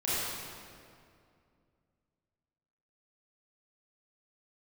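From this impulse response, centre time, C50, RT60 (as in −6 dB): 159 ms, −5.0 dB, 2.4 s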